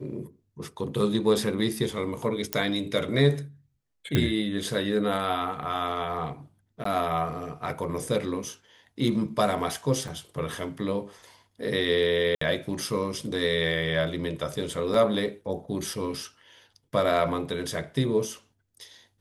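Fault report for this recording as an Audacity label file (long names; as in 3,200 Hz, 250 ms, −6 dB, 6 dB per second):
2.530000	2.530000	click −7 dBFS
4.150000	4.150000	click −10 dBFS
6.840000	6.850000	drop-out 14 ms
10.080000	10.080000	drop-out 3.4 ms
12.350000	12.410000	drop-out 64 ms
14.940000	14.940000	drop-out 3.2 ms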